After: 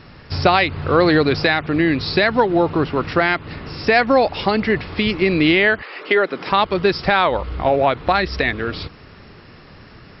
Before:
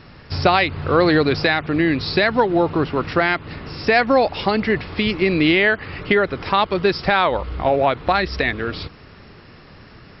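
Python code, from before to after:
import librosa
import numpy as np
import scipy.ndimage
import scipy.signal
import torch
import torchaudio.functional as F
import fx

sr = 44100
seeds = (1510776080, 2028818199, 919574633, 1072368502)

y = fx.highpass(x, sr, hz=fx.line((5.81, 530.0), (6.5, 140.0)), slope=24, at=(5.81, 6.5), fade=0.02)
y = y * 10.0 ** (1.0 / 20.0)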